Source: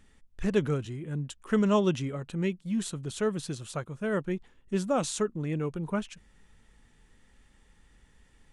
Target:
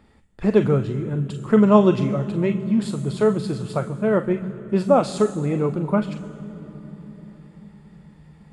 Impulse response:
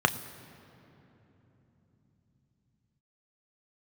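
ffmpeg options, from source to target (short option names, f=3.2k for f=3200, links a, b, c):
-filter_complex "[0:a]asplit=2[a][b];[1:a]atrim=start_sample=2205,asetrate=33516,aresample=44100[c];[b][c]afir=irnorm=-1:irlink=0,volume=-7.5dB[d];[a][d]amix=inputs=2:normalize=0"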